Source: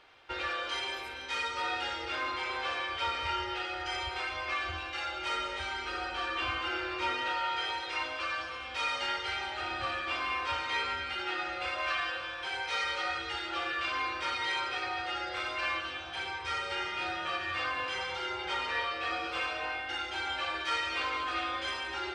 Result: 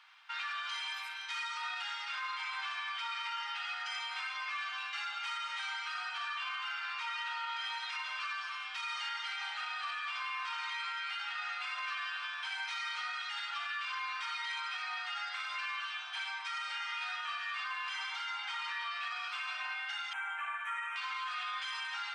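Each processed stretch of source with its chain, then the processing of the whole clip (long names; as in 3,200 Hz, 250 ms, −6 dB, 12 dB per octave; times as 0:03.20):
0:20.13–0:20.96: Butterworth band-reject 4,600 Hz, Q 0.66 + low-shelf EQ 270 Hz −9.5 dB
whole clip: Butterworth high-pass 940 Hz 36 dB per octave; brickwall limiter −30 dBFS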